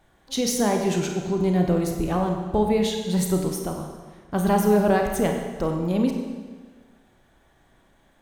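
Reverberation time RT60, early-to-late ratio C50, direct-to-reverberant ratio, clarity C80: 1.5 s, 4.0 dB, 2.5 dB, 5.5 dB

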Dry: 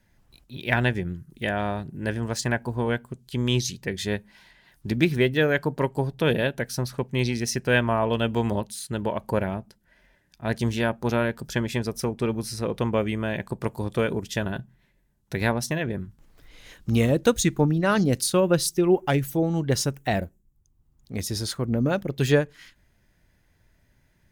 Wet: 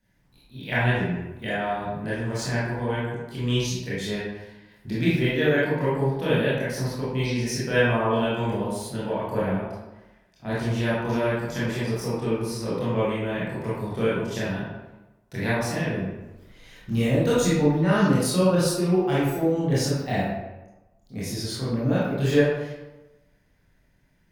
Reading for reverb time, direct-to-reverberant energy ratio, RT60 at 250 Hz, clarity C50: 1.1 s, -9.5 dB, 1.1 s, -2.0 dB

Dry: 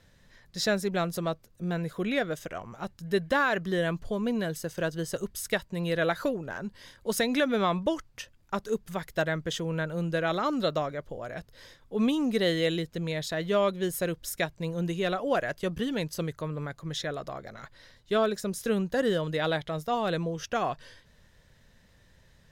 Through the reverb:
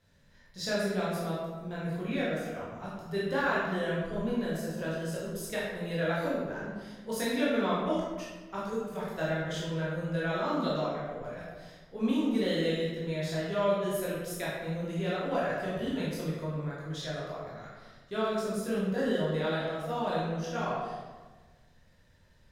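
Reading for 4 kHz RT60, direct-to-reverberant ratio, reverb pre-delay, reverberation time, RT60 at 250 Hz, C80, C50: 0.85 s, -8.0 dB, 14 ms, 1.3 s, 1.6 s, 1.5 dB, -1.0 dB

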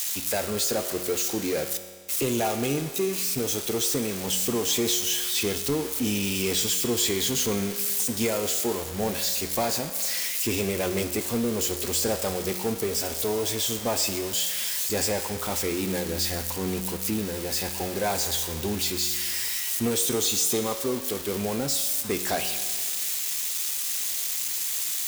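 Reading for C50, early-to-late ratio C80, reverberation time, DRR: 9.5 dB, 11.0 dB, 1.8 s, 8.0 dB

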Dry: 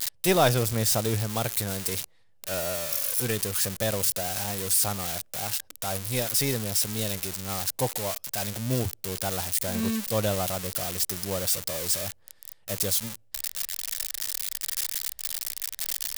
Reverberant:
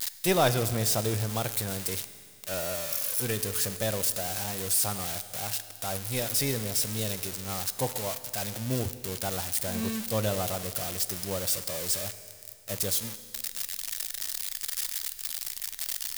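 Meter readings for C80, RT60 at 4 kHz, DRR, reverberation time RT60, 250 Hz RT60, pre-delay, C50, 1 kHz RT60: 13.5 dB, 2.2 s, 11.5 dB, 2.2 s, 2.2 s, 10 ms, 12.5 dB, 2.2 s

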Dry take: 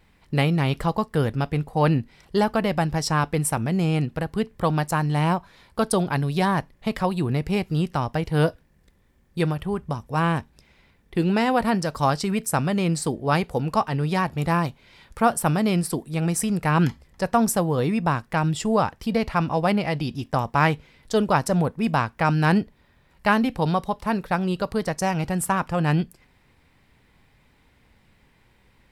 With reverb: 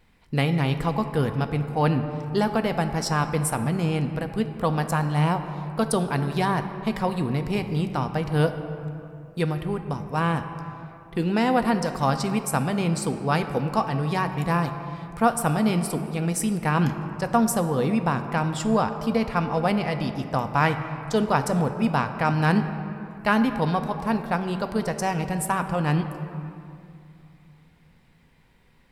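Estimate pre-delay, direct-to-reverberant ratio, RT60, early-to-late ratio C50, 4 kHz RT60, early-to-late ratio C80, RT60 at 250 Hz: 4 ms, 7.5 dB, 2.6 s, 9.0 dB, 1.4 s, 9.5 dB, 3.0 s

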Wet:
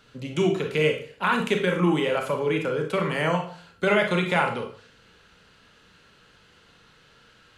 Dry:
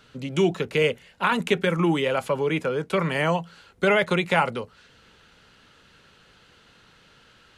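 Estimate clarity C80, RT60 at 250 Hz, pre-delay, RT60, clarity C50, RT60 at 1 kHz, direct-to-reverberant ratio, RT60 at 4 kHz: 12.0 dB, 0.55 s, 29 ms, 0.50 s, 7.0 dB, 0.45 s, 3.0 dB, 0.35 s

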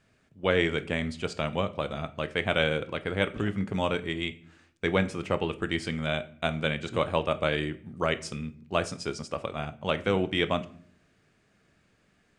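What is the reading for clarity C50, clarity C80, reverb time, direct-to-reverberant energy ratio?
17.5 dB, 21.5 dB, 0.55 s, 11.0 dB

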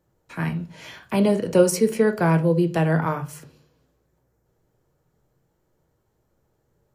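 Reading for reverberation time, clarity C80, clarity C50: 0.45 s, 21.5 dB, 14.5 dB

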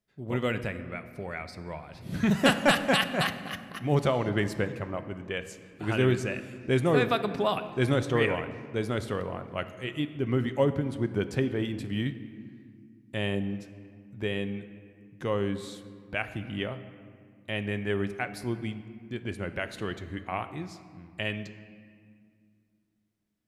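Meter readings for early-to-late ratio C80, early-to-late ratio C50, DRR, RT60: 13.0 dB, 12.0 dB, 10.0 dB, 2.1 s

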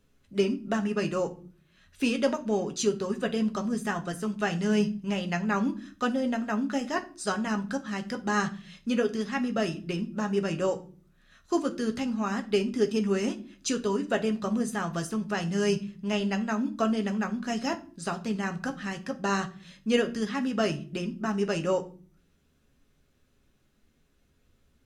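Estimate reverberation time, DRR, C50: 0.45 s, 4.5 dB, 16.5 dB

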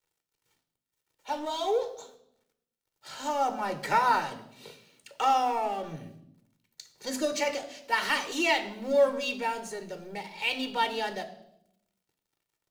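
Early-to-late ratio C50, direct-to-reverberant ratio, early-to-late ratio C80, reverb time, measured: 12.5 dB, 7.5 dB, 15.0 dB, 0.80 s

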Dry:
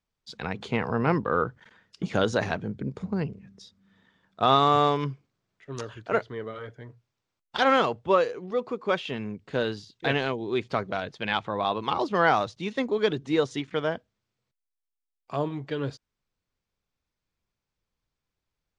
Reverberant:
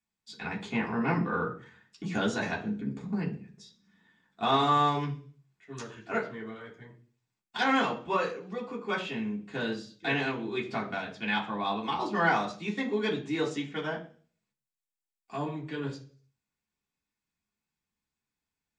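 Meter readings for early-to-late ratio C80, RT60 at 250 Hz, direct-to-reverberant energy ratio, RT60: 15.5 dB, 0.55 s, -4.0 dB, 0.45 s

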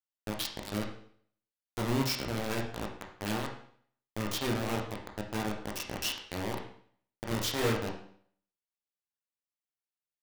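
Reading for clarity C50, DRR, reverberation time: 6.0 dB, 0.0 dB, 0.55 s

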